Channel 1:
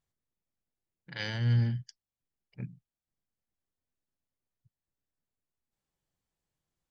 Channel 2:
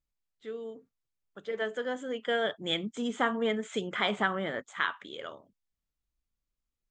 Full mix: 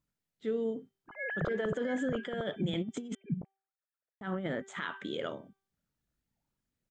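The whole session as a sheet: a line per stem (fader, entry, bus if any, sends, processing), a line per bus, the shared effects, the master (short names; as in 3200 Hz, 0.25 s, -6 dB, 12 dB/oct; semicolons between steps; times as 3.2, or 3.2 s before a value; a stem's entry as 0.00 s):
+1.5 dB, 0.00 s, no send, echo send -6 dB, sine-wave speech; LPF 1800 Hz 24 dB/oct; phaser stages 6, 0.46 Hz, lowest notch 210–1400 Hz
-3.0 dB, 0.00 s, muted 3.15–4.21, no send, no echo send, bell 160 Hz +13 dB 2.7 oct; negative-ratio compressor -28 dBFS, ratio -0.5; low shelf 62 Hz -12 dB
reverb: off
echo: echo 0.679 s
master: bell 1100 Hz -5 dB 0.23 oct; de-hum 389.7 Hz, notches 9; limiter -24 dBFS, peak gain reduction 8.5 dB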